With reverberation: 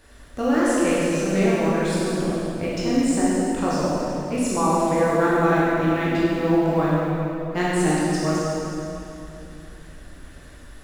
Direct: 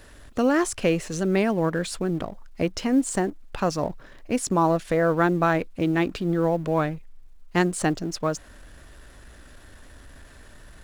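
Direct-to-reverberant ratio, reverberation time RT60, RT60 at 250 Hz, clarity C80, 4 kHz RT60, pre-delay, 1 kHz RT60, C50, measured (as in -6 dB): -8.5 dB, 2.9 s, 3.7 s, -2.5 dB, 2.5 s, 13 ms, 2.7 s, -4.0 dB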